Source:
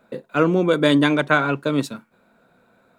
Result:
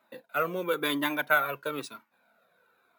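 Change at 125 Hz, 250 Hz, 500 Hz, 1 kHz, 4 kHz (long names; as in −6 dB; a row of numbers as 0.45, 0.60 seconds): −20.5, −16.0, −11.5, −6.5, −8.0 decibels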